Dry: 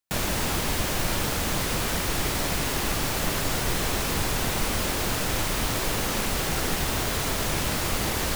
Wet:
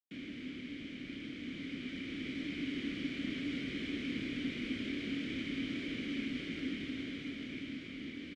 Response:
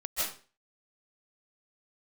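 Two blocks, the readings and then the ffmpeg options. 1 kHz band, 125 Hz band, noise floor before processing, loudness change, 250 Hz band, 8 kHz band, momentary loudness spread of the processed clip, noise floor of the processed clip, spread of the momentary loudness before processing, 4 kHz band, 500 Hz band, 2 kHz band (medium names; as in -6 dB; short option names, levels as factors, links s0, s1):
-31.0 dB, -19.5 dB, -28 dBFS, -14.0 dB, -5.0 dB, under -30 dB, 6 LU, -47 dBFS, 0 LU, -15.5 dB, -18.0 dB, -13.5 dB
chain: -filter_complex "[0:a]dynaudnorm=f=460:g=9:m=2.24,afreqshift=13,asplit=2[s0][s1];[s1]acrusher=samples=41:mix=1:aa=0.000001,volume=0.282[s2];[s0][s2]amix=inputs=2:normalize=0,adynamicsmooth=sensitivity=0.5:basefreq=5100,asplit=3[s3][s4][s5];[s3]bandpass=f=270:t=q:w=8,volume=1[s6];[s4]bandpass=f=2290:t=q:w=8,volume=0.501[s7];[s5]bandpass=f=3010:t=q:w=8,volume=0.355[s8];[s6][s7][s8]amix=inputs=3:normalize=0,asplit=2[s9][s10];[s10]adelay=28,volume=0.282[s11];[s9][s11]amix=inputs=2:normalize=0,volume=0.531"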